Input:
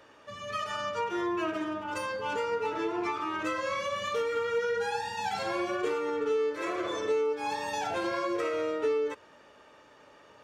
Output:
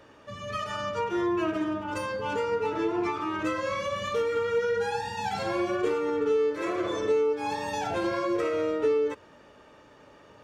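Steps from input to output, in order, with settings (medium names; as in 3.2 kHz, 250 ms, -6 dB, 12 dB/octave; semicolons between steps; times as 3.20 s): bass shelf 330 Hz +10 dB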